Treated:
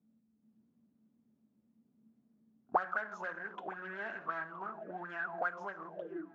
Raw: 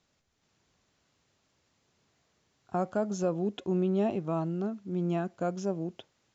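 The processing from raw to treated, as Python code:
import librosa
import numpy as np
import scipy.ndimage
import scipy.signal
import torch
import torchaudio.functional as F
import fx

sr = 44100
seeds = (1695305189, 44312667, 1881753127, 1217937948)

p1 = scipy.signal.sosfilt(scipy.signal.butter(4, 52.0, 'highpass', fs=sr, output='sos'), x)
p2 = fx.hum_notches(p1, sr, base_hz=60, count=7)
p3 = fx.room_shoebox(p2, sr, seeds[0], volume_m3=330.0, walls='mixed', distance_m=0.39)
p4 = 10.0 ** (-35.5 / 20.0) * (np.abs((p3 / 10.0 ** (-35.5 / 20.0) + 3.0) % 4.0 - 2.0) - 1.0)
p5 = p3 + F.gain(torch.from_numpy(p4), -7.0).numpy()
p6 = fx.auto_wah(p5, sr, base_hz=220.0, top_hz=1600.0, q=19.0, full_db=-27.0, direction='up')
p7 = p6 + fx.echo_feedback(p6, sr, ms=968, feedback_pct=34, wet_db=-21.0, dry=0)
p8 = fx.doppler_dist(p7, sr, depth_ms=0.16)
y = F.gain(torch.from_numpy(p8), 17.5).numpy()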